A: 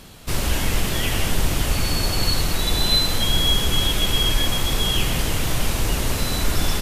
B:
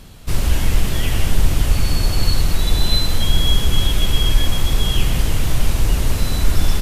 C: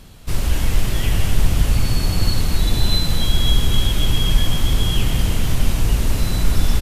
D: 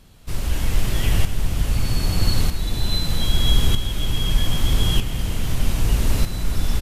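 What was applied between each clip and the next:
bass shelf 140 Hz +10 dB; trim -2 dB
frequency-shifting echo 254 ms, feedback 58%, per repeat -61 Hz, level -9.5 dB; trim -2 dB
tremolo saw up 0.8 Hz, depth 60%

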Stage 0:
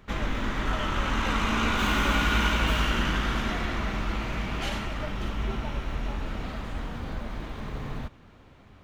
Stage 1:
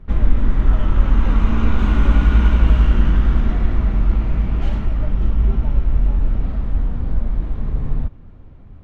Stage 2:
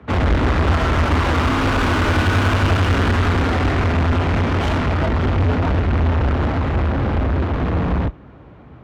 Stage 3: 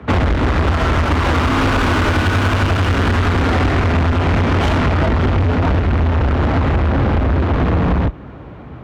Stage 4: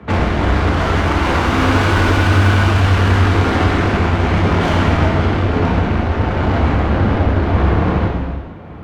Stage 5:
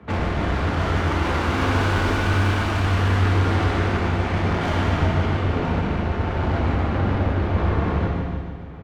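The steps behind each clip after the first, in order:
tilt EQ -4 dB/octave; trim -2 dB
frequency shift +39 Hz; overdrive pedal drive 43 dB, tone 2.1 kHz, clips at -2 dBFS; upward expansion 2.5:1, over -18 dBFS; trim -5 dB
compression, threshold -21 dBFS, peak gain reduction 9 dB; trim +8 dB
gated-style reverb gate 480 ms falling, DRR -3 dB; trim -3.5 dB
feedback delay 148 ms, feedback 57%, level -7 dB; trim -8 dB

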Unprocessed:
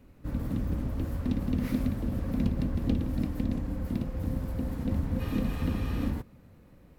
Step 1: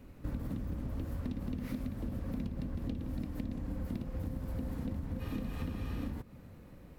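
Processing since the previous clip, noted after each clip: compression 12:1, threshold -36 dBFS, peak gain reduction 15.5 dB; trim +2.5 dB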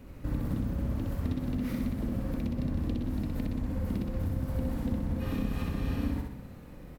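feedback delay 63 ms, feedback 50%, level -3 dB; trim +4 dB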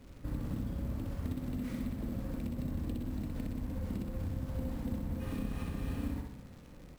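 crackle 440 per s -47 dBFS; sample-rate reducer 12 kHz, jitter 0%; trim -5.5 dB

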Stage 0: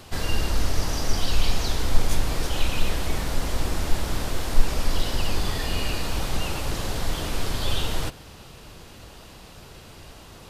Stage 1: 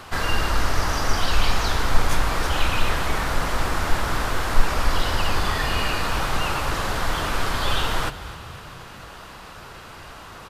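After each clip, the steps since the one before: peaking EQ 1.3 kHz +12 dB 1.7 oct; on a send: frequency-shifting echo 251 ms, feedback 55%, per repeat +32 Hz, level -16.5 dB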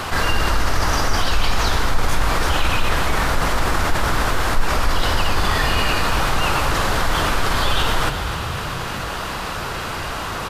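level flattener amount 50%; trim -3 dB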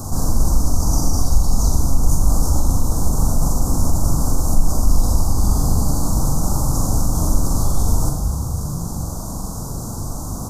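Chebyshev band-stop 830–6300 Hz, order 3; high-order bell 580 Hz -11.5 dB; on a send: flutter echo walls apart 7.2 m, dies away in 0.48 s; on the sum: trim +4.5 dB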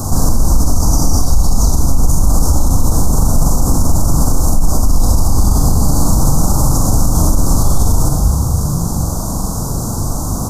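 loudness maximiser +9.5 dB; trim -1 dB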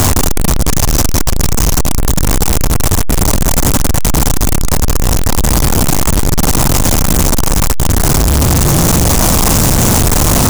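one-bit comparator

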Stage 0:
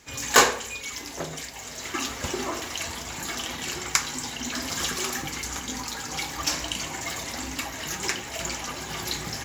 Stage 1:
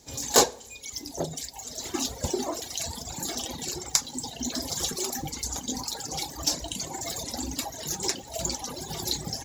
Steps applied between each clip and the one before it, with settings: reverb removal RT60 1.9 s; high-order bell 1.8 kHz -12.5 dB; in parallel at +3 dB: gain riding within 3 dB 0.5 s; on the sum: trim -5.5 dB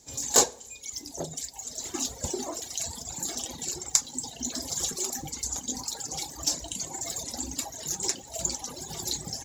peaking EQ 7.3 kHz +7.5 dB 0.57 oct; trim -4.5 dB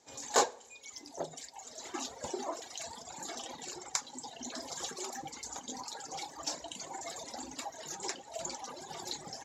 band-pass filter 1.1 kHz, Q 0.67; trim +1 dB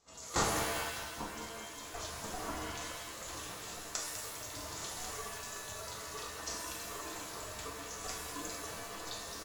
ring modulator 360 Hz; feedback delay 201 ms, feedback 54%, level -9.5 dB; pitch-shifted reverb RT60 1.1 s, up +7 st, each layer -2 dB, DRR -0.5 dB; trim -3.5 dB

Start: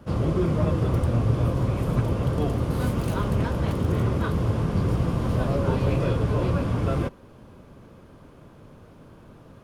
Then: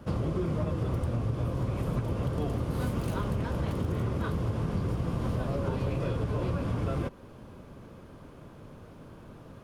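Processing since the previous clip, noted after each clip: compression 5:1, threshold -27 dBFS, peak gain reduction 10.5 dB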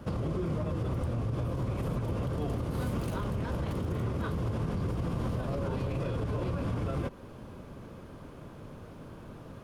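peak limiter -26.5 dBFS, peak gain reduction 8 dB; trim +2 dB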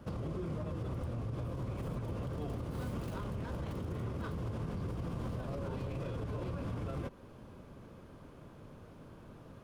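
tracing distortion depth 0.1 ms; trim -6.5 dB

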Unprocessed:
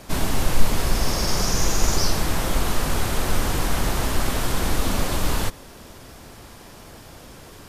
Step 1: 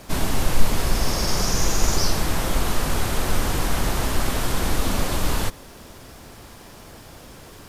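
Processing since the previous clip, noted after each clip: bit crusher 10-bit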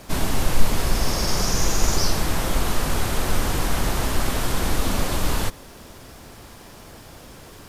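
no audible change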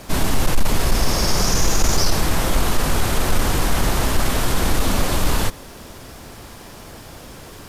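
sine folder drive 6 dB, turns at -2 dBFS; trim -5.5 dB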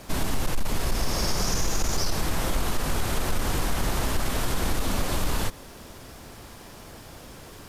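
compression 2.5:1, threshold -15 dBFS, peak gain reduction 4.5 dB; trim -5.5 dB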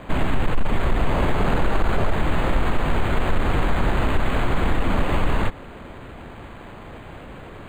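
decimation joined by straight lines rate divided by 8×; trim +6 dB

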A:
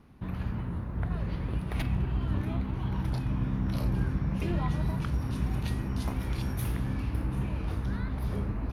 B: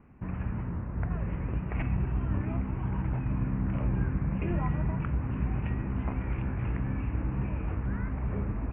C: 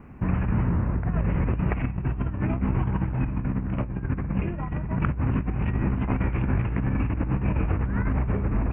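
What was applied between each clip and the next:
steep low-pass 2.7 kHz 72 dB/octave
compressor with a negative ratio -32 dBFS, ratio -0.5; trim +8 dB

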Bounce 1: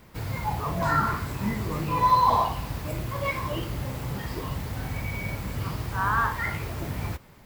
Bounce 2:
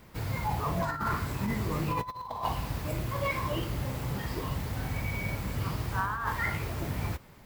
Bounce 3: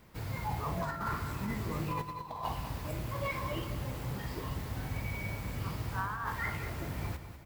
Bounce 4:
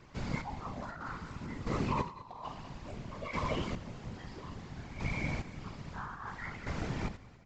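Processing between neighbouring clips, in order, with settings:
compressor with a negative ratio -26 dBFS, ratio -0.5; trim -3 dB
feedback delay 198 ms, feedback 45%, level -11 dB; trim -5 dB
square tremolo 0.6 Hz, depth 65%, duty 25%; whisper effect; resampled via 16 kHz; trim +2.5 dB

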